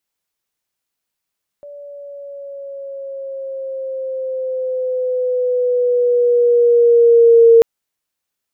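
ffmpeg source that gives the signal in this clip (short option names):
-f lavfi -i "aevalsrc='pow(10,(-4+28*(t/5.99-1))/20)*sin(2*PI*578*5.99/(-4*log(2)/12)*(exp(-4*log(2)/12*t/5.99)-1))':d=5.99:s=44100"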